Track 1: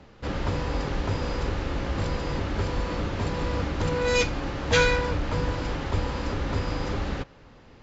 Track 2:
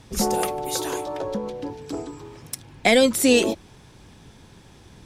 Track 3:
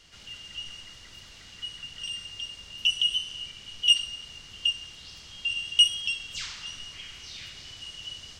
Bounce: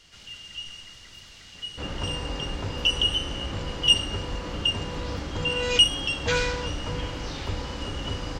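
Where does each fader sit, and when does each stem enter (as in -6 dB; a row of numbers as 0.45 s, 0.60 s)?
-4.5 dB, mute, +1.0 dB; 1.55 s, mute, 0.00 s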